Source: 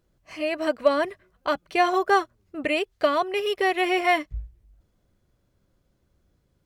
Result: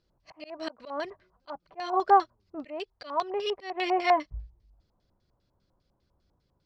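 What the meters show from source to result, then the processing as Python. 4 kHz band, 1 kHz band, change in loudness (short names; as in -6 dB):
-7.0 dB, -1.5 dB, -4.5 dB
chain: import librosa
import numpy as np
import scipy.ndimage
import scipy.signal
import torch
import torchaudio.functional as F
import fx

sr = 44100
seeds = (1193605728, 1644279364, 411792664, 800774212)

y = fx.auto_swell(x, sr, attack_ms=277.0)
y = fx.filter_lfo_lowpass(y, sr, shape='square', hz=5.0, low_hz=930.0, high_hz=4700.0, q=4.1)
y = y * 10.0 ** (-5.5 / 20.0)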